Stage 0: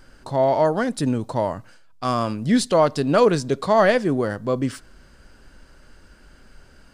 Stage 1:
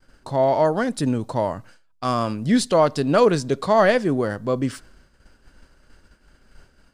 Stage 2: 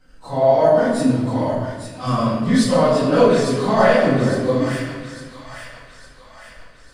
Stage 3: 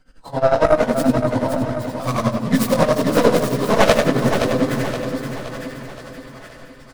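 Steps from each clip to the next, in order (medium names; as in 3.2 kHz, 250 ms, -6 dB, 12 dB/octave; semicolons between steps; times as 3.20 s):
expander -42 dBFS
phase randomisation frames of 100 ms; feedback echo behind a high-pass 855 ms, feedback 50%, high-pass 1.6 kHz, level -7 dB; reverberation RT60 1.4 s, pre-delay 4 ms, DRR -1.5 dB; trim -1.5 dB
tracing distortion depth 0.47 ms; tremolo 11 Hz, depth 82%; feedback delay 521 ms, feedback 49%, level -7 dB; trim +2 dB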